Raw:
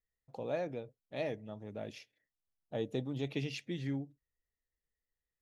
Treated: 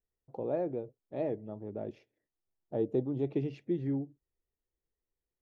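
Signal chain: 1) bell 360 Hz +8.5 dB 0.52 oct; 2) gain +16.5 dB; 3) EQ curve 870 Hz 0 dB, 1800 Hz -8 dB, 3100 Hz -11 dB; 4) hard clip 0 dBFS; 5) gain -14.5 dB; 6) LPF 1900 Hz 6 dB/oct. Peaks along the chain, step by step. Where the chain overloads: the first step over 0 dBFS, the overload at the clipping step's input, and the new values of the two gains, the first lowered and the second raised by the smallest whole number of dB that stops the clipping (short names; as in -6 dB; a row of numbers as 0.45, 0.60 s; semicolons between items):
-20.0, -3.5, -4.5, -4.5, -19.0, -19.0 dBFS; no overload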